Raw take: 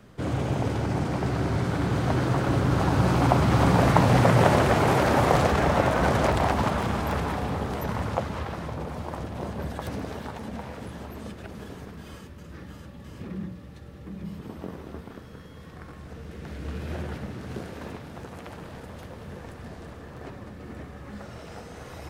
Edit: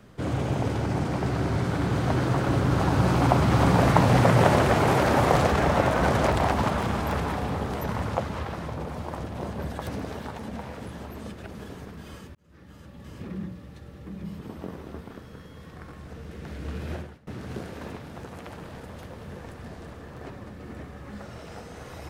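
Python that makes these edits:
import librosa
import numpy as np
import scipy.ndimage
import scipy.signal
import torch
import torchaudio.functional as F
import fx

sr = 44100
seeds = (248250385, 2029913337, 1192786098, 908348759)

y = fx.edit(x, sr, fx.fade_in_span(start_s=12.35, length_s=0.73),
    fx.fade_out_to(start_s=16.94, length_s=0.33, curve='qua', floor_db=-24.0), tone=tone)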